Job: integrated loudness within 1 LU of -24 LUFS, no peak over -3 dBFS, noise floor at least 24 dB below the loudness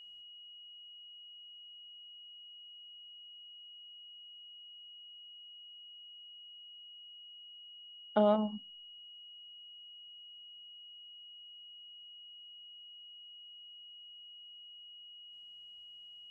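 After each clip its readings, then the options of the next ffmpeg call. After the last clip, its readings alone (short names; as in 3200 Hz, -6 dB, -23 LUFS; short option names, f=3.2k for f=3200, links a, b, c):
steady tone 2900 Hz; tone level -50 dBFS; loudness -43.5 LUFS; peak -15.5 dBFS; loudness target -24.0 LUFS
-> -af "bandreject=f=2.9k:w=30"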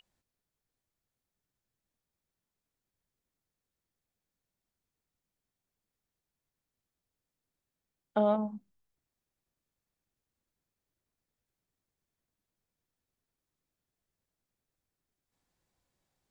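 steady tone none; loudness -31.0 LUFS; peak -16.0 dBFS; loudness target -24.0 LUFS
-> -af "volume=7dB"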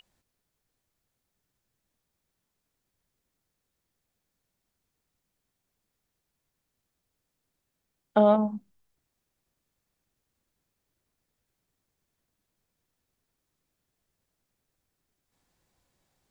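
loudness -24.0 LUFS; peak -9.0 dBFS; noise floor -83 dBFS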